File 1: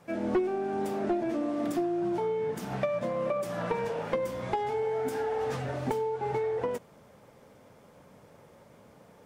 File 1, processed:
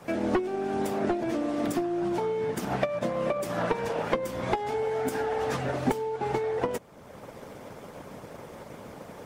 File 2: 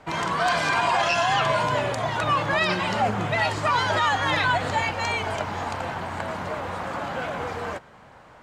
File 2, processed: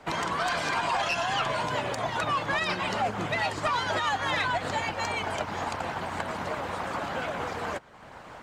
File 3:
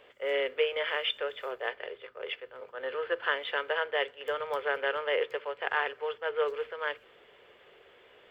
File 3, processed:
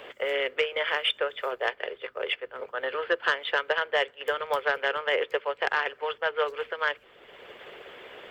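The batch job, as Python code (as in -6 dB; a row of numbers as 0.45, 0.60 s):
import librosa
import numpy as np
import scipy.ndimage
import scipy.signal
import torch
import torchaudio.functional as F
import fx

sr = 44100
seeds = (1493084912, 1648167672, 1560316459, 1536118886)

y = fx.hpss(x, sr, part='percussive', gain_db=8)
y = fx.transient(y, sr, attack_db=2, sustain_db=-3)
y = 10.0 ** (-10.0 / 20.0) * np.tanh(y / 10.0 ** (-10.0 / 20.0))
y = fx.band_squash(y, sr, depth_pct=40)
y = y * 10.0 ** (-30 / 20.0) / np.sqrt(np.mean(np.square(y)))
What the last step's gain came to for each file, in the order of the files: +0.5, -8.5, -1.5 dB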